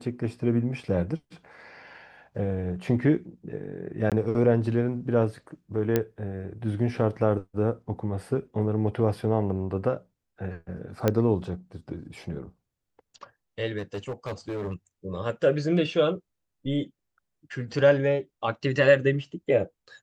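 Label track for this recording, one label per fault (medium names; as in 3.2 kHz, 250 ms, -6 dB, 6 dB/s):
4.100000	4.120000	dropout 17 ms
5.960000	5.960000	pop -10 dBFS
11.080000	11.080000	pop -9 dBFS
13.780000	14.730000	clipped -27.5 dBFS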